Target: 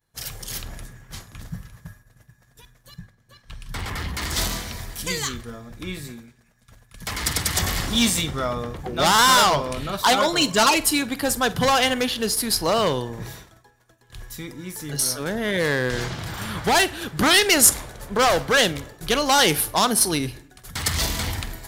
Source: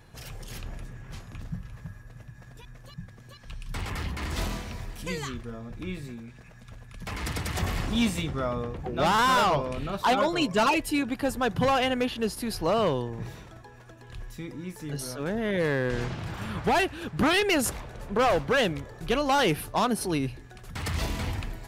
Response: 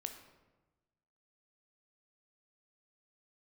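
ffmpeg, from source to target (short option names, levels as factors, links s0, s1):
-filter_complex "[0:a]crystalizer=i=6.5:c=0,agate=range=0.0224:threshold=0.0178:ratio=3:detection=peak,asettb=1/sr,asplit=3[s0][s1][s2];[s0]atrim=end=2.994[s3];[s1]atrim=start=2.99:end=4.14,asetpts=PTS-STARTPTS,afade=t=in:d=0.004:c=qsin,afade=t=out:st=1.146:d=0.004:c=qsin,highshelf=f=4300:g=-9.5[s4];[s2]atrim=start=4.136[s5];[s3][s4]acrossfade=d=0.004:c1=hsin:c2=qsin[s6];[s6][s5]acrossfade=d=0.004:c1=qsin:c2=hsin,asplit=2[s7][s8];[s8]adynamicsmooth=sensitivity=4:basefreq=3800,volume=0.891[s9];[s7][s9]amix=inputs=2:normalize=0,equalizer=f=2600:w=4.9:g=-6.5,asplit=2[s10][s11];[1:a]atrim=start_sample=2205,afade=t=out:st=0.35:d=0.01,atrim=end_sample=15876,adelay=47[s12];[s11][s12]afir=irnorm=-1:irlink=0,volume=0.2[s13];[s10][s13]amix=inputs=2:normalize=0,volume=0.668"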